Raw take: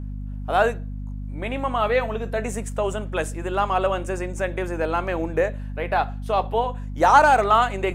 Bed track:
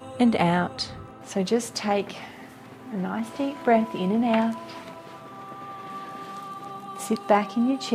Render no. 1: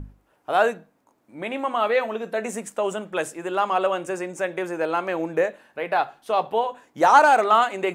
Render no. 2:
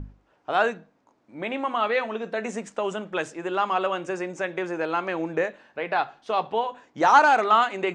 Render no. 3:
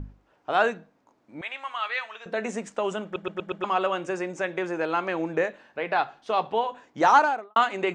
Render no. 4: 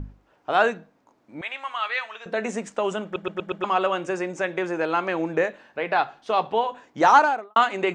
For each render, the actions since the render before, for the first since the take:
hum notches 50/100/150/200/250 Hz
low-pass 6.4 kHz 24 dB/octave; dynamic bell 580 Hz, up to -5 dB, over -30 dBFS, Q 1.5
1.41–2.26 s: high-pass 1.4 kHz; 3.04 s: stutter in place 0.12 s, 5 plays; 7.05–7.56 s: studio fade out
trim +2.5 dB

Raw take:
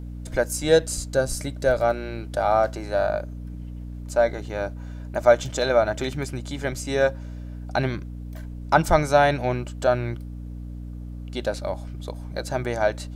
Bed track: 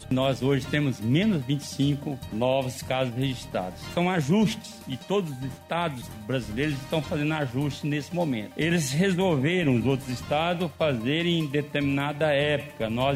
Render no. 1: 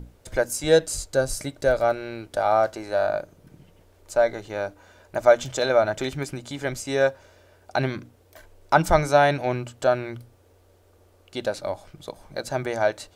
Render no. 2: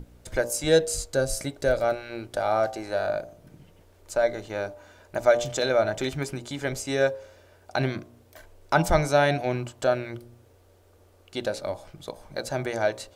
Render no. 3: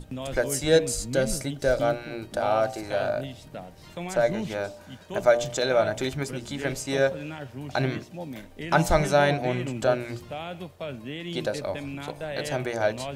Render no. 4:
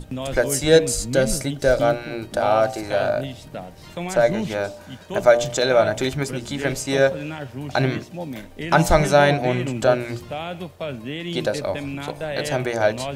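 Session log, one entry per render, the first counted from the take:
hum notches 60/120/180/240/300 Hz
dynamic bell 970 Hz, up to -5 dB, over -32 dBFS, Q 1.1; de-hum 59.52 Hz, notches 20
add bed track -10.5 dB
trim +5.5 dB; peak limiter -2 dBFS, peak gain reduction 1.5 dB

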